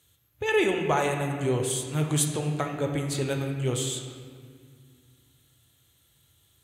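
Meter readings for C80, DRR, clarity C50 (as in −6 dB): 6.0 dB, 2.5 dB, 4.5 dB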